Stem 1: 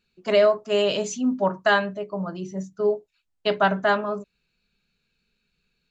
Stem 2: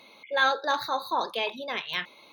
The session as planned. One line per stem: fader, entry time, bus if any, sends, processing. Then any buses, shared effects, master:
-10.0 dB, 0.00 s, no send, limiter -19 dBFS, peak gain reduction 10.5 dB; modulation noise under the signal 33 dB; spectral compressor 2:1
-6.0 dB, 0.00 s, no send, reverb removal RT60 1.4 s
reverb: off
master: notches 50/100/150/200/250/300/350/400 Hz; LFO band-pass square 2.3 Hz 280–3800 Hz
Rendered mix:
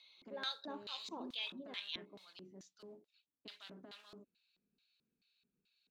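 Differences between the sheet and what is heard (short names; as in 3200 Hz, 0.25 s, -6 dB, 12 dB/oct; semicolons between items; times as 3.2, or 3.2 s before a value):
stem 2: missing reverb removal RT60 1.4 s; master: missing notches 50/100/150/200/250/300/350/400 Hz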